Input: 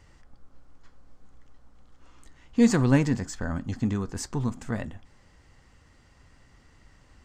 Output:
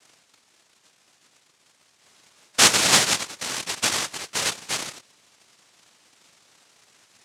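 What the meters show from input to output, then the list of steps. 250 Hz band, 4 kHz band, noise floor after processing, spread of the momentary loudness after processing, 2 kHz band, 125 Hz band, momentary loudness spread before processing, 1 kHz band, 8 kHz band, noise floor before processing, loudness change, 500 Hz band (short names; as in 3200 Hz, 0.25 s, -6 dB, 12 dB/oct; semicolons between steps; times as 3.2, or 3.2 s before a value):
-12.5 dB, +23.0 dB, -63 dBFS, 13 LU, +12.0 dB, -13.0 dB, 13 LU, +10.5 dB, +19.0 dB, -59 dBFS, +6.0 dB, -1.5 dB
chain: octaver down 2 oct, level +1 dB; noise vocoder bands 1; gain +2 dB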